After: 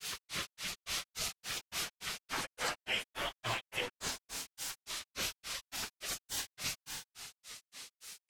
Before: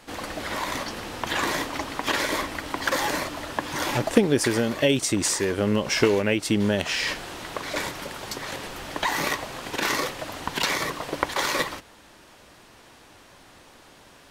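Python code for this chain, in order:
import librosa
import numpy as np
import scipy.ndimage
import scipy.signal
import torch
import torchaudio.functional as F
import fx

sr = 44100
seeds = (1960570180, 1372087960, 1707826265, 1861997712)

y = fx.spec_gate(x, sr, threshold_db=-15, keep='weak')
y = fx.rev_schroeder(y, sr, rt60_s=2.3, comb_ms=27, drr_db=6.5)
y = fx.stretch_vocoder_free(y, sr, factor=0.58)
y = fx.granulator(y, sr, seeds[0], grain_ms=187.0, per_s=3.5, spray_ms=100.0, spread_st=3)
y = fx.env_flatten(y, sr, amount_pct=50)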